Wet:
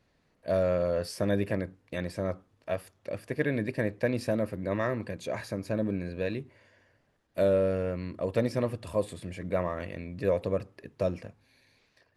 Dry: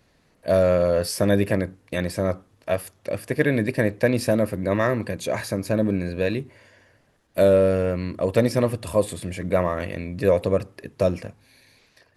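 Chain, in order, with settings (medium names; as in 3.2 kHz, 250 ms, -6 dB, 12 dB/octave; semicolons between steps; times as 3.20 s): treble shelf 9 kHz -11.5 dB; trim -8 dB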